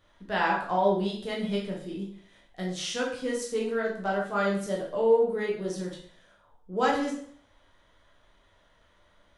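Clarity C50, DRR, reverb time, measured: 4.5 dB, -4.0 dB, 0.55 s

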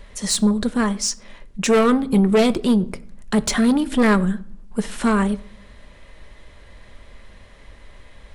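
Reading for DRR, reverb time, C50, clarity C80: 11.5 dB, 0.60 s, 20.5 dB, 23.0 dB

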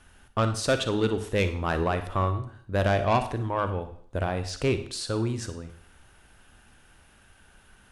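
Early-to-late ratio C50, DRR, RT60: 10.5 dB, 9.0 dB, 0.55 s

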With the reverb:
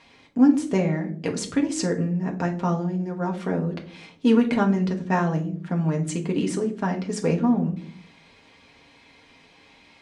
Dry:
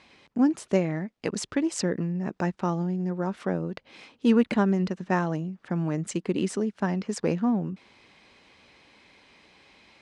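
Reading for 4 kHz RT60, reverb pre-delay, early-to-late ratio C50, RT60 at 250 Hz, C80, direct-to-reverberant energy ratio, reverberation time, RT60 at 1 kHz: 0.30 s, 4 ms, 13.0 dB, 0.75 s, 18.0 dB, 1.0 dB, 0.50 s, 0.40 s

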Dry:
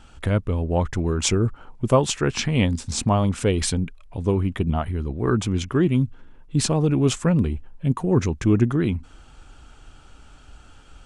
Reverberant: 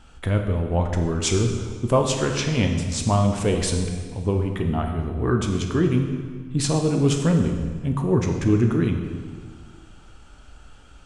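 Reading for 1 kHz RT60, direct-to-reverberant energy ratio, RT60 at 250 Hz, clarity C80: 1.7 s, 3.0 dB, 2.1 s, 7.0 dB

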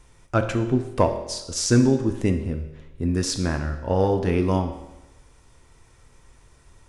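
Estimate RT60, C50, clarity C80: 1.0 s, 9.0 dB, 11.0 dB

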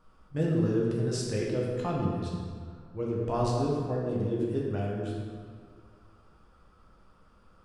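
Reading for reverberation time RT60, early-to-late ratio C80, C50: 2.0 s, 1.5 dB, 0.0 dB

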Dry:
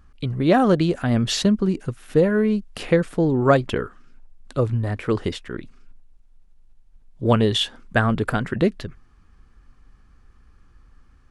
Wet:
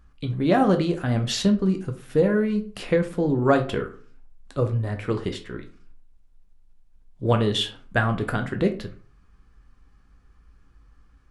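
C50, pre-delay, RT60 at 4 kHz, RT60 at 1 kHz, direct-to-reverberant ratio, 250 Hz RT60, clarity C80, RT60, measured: 12.5 dB, 8 ms, 0.25 s, 0.40 s, 5.0 dB, 0.50 s, 18.0 dB, 0.40 s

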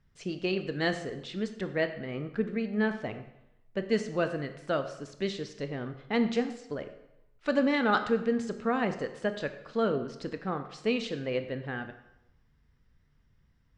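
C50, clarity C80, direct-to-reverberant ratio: 10.5 dB, 12.5 dB, 8.0 dB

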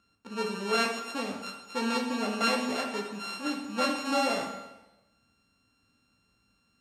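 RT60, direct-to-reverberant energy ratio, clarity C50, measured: 1.0 s, 0.5 dB, 5.0 dB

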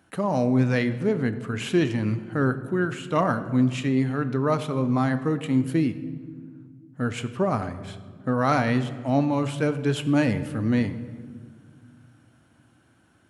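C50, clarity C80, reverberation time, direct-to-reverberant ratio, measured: 13.0 dB, 14.0 dB, 1.9 s, 11.0 dB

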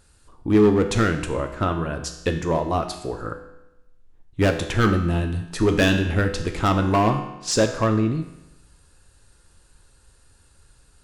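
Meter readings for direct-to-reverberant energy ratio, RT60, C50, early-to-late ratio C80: 5.0 dB, 0.95 s, 8.5 dB, 10.5 dB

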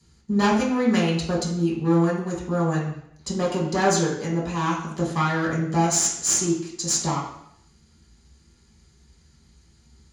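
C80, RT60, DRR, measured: 7.0 dB, 0.70 s, -5.5 dB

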